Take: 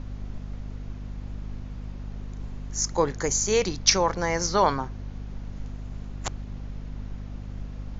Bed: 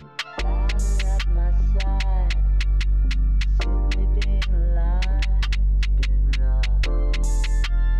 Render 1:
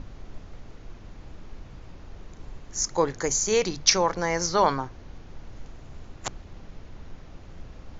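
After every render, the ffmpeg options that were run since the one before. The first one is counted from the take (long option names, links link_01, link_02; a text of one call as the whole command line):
ffmpeg -i in.wav -af "bandreject=frequency=50:width_type=h:width=6,bandreject=frequency=100:width_type=h:width=6,bandreject=frequency=150:width_type=h:width=6,bandreject=frequency=200:width_type=h:width=6,bandreject=frequency=250:width_type=h:width=6" out.wav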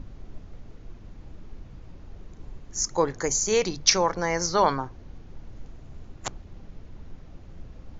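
ffmpeg -i in.wav -af "afftdn=noise_reduction=6:noise_floor=-46" out.wav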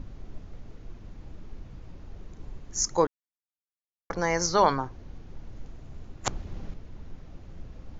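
ffmpeg -i in.wav -filter_complex "[0:a]asettb=1/sr,asplit=3[link_01][link_02][link_03];[link_01]atrim=end=6.274[link_04];[link_02]atrim=start=6.27:end=6.74,asetpts=PTS-STARTPTS,afade=type=in:duration=0.004:curve=qsin,afade=type=out:start_time=0.466:duration=0.004:curve=qsin,acontrast=53[link_05];[link_03]atrim=start=6.736[link_06];[link_04][link_05]acrossfade=duration=0.004:curve1=hsin:curve2=qsin[link_07];[link_07][link_06]acrossfade=duration=0.004:curve1=qsin:curve2=hsin,asplit=3[link_08][link_09][link_10];[link_08]atrim=end=3.07,asetpts=PTS-STARTPTS,afade=type=out:start_time=3.066:duration=0.004:curve=hsin[link_11];[link_09]atrim=start=3.07:end=4.1,asetpts=PTS-STARTPTS,volume=0[link_12];[link_10]atrim=start=4.1,asetpts=PTS-STARTPTS,afade=type=in:duration=0.004:curve=hsin[link_13];[link_11][link_12][link_13]concat=n=3:v=0:a=1" out.wav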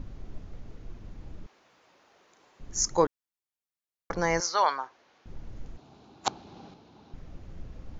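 ffmpeg -i in.wav -filter_complex "[0:a]asettb=1/sr,asplit=3[link_01][link_02][link_03];[link_01]atrim=end=1.464[link_04];[link_02]atrim=start=1.46:end=2.6,asetpts=PTS-STARTPTS,afade=type=in:duration=0.004:curve=qsin,afade=type=out:start_time=1.136:duration=0.004:curve=qsin,highpass=730[link_05];[link_03]atrim=start=2.596[link_06];[link_04][link_05]acrossfade=duration=0.004:curve1=hsin:curve2=qsin[link_07];[link_07][link_06]acrossfade=duration=0.004:curve1=qsin:curve2=hsin,asettb=1/sr,asplit=3[link_08][link_09][link_10];[link_08]atrim=end=4.404[link_11];[link_09]atrim=start=4.4:end=5.26,asetpts=PTS-STARTPTS,afade=type=in:duration=0.004:curve=qsin,afade=type=out:start_time=0.856:duration=0.004:curve=qsin,highpass=800,lowpass=6300[link_12];[link_10]atrim=start=5.256[link_13];[link_11][link_12]acrossfade=duration=0.004:curve1=hsin:curve2=qsin[link_14];[link_14][link_13]acrossfade=duration=0.004:curve1=qsin:curve2=hsin,asettb=1/sr,asplit=3[link_15][link_16][link_17];[link_15]atrim=end=5.774[link_18];[link_16]atrim=start=5.77:end=7.14,asetpts=PTS-STARTPTS,afade=type=in:duration=0.004:curve=qsin,afade=type=out:start_time=1.366:duration=0.004:curve=qsin,highpass=230,equalizer=frequency=540:width_type=q:width=4:gain=-5,equalizer=frequency=820:width_type=q:width=4:gain=8,equalizer=frequency=1900:width_type=q:width=4:gain=-9,equalizer=frequency=4000:width_type=q:width=4:gain=6,lowpass=frequency=6400:width=0.5412,lowpass=frequency=6400:width=1.3066[link_19];[link_17]atrim=start=7.136[link_20];[link_18][link_19]acrossfade=duration=0.004:curve1=hsin:curve2=qsin[link_21];[link_21][link_20]acrossfade=duration=0.004:curve1=qsin:curve2=hsin" out.wav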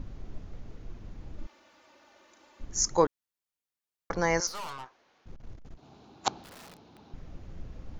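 ffmpeg -i in.wav -filter_complex "[0:a]asettb=1/sr,asplit=3[link_01][link_02][link_03];[link_01]atrim=end=1.384[link_04];[link_02]atrim=start=1.38:end=2.65,asetpts=PTS-STARTPTS,afade=type=in:duration=0.004:curve=qsin,afade=type=out:start_time=1.266:duration=0.004:curve=qsin,aecho=1:1:3.4:0.9,atrim=end_sample=56007[link_05];[link_03]atrim=start=2.646[link_06];[link_04][link_05]acrossfade=duration=0.004:curve1=hsin:curve2=qsin[link_07];[link_07][link_06]acrossfade=duration=0.004:curve1=qsin:curve2=hsin,asettb=1/sr,asplit=3[link_08][link_09][link_10];[link_08]atrim=end=4.474[link_11];[link_09]atrim=start=4.47:end=5.83,asetpts=PTS-STARTPTS,afade=type=in:duration=0.004:curve=qsin,afade=type=out:start_time=1.356:duration=0.004:curve=qsin,aeval=exprs='(tanh(70.8*val(0)+0.65)-tanh(0.65))/70.8':channel_layout=same[link_12];[link_10]atrim=start=5.826[link_13];[link_11][link_12]acrossfade=duration=0.004:curve1=hsin:curve2=qsin[link_14];[link_14][link_13]acrossfade=duration=0.004:curve1=qsin:curve2=hsin,asettb=1/sr,asplit=3[link_15][link_16][link_17];[link_15]atrim=end=6.434[link_18];[link_16]atrim=start=6.43:end=7.04,asetpts=PTS-STARTPTS,afade=type=in:duration=0.004:curve=qsin,afade=type=out:start_time=0.606:duration=0.004:curve=qsin,aeval=exprs='(mod(158*val(0)+1,2)-1)/158':channel_layout=same[link_19];[link_17]atrim=start=7.036[link_20];[link_18][link_19]acrossfade=duration=0.004:curve1=hsin:curve2=qsin[link_21];[link_21][link_20]acrossfade=duration=0.004:curve1=qsin:curve2=hsin" out.wav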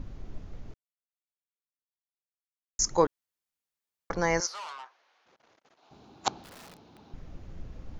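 ffmpeg -i in.wav -filter_complex "[0:a]asettb=1/sr,asplit=3[link_01][link_02][link_03];[link_01]atrim=end=4.464[link_04];[link_02]atrim=start=4.46:end=5.91,asetpts=PTS-STARTPTS,afade=type=in:duration=0.004:curve=qsin,afade=type=out:start_time=1.446:duration=0.004:curve=qsin,highpass=690,lowpass=6300[link_05];[link_03]atrim=start=5.906[link_06];[link_04][link_05]acrossfade=duration=0.004:curve1=hsin:curve2=qsin[link_07];[link_07][link_06]acrossfade=duration=0.004:curve1=qsin:curve2=hsin,asplit=3[link_08][link_09][link_10];[link_08]atrim=end=0.74,asetpts=PTS-STARTPTS,afade=type=out:start_time=0.736:duration=0.004:curve=hsin[link_11];[link_09]atrim=start=0.74:end=2.79,asetpts=PTS-STARTPTS,volume=0[link_12];[link_10]atrim=start=2.79,asetpts=PTS-STARTPTS,afade=type=in:duration=0.004:curve=hsin[link_13];[link_11][link_12][link_13]concat=n=3:v=0:a=1" out.wav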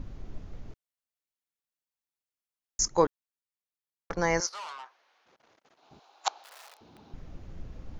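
ffmpeg -i in.wav -filter_complex "[0:a]asettb=1/sr,asplit=3[link_01][link_02][link_03];[link_01]atrim=end=2.844[link_04];[link_02]atrim=start=2.84:end=4.53,asetpts=PTS-STARTPTS,afade=type=in:duration=0.004:curve=qsin,afade=type=out:start_time=1.686:duration=0.004:curve=qsin,agate=range=-9dB:threshold=-36dB:ratio=16:release=100:detection=peak[link_05];[link_03]atrim=start=4.526[link_06];[link_04][link_05]acrossfade=duration=0.004:curve1=hsin:curve2=qsin[link_07];[link_07][link_06]acrossfade=duration=0.004:curve1=qsin:curve2=hsin,asettb=1/sr,asplit=3[link_08][link_09][link_10];[link_08]atrim=end=5.994[link_11];[link_09]atrim=start=5.99:end=6.81,asetpts=PTS-STARTPTS,afade=type=in:duration=0.004:curve=qsin,afade=type=out:start_time=0.816:duration=0.004:curve=qsin,highpass=frequency=620:width=0.5412,highpass=frequency=620:width=1.3066[link_12];[link_10]atrim=start=6.806[link_13];[link_11][link_12]acrossfade=duration=0.004:curve1=hsin:curve2=qsin[link_14];[link_14][link_13]acrossfade=duration=0.004:curve1=qsin:curve2=hsin" out.wav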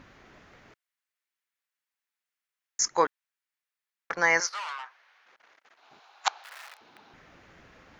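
ffmpeg -i in.wav -af "highpass=frequency=560:poles=1,equalizer=frequency=1800:width_type=o:width=1.5:gain=10.5" out.wav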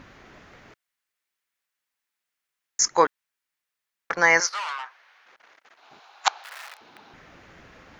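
ffmpeg -i in.wav -af "volume=5dB" out.wav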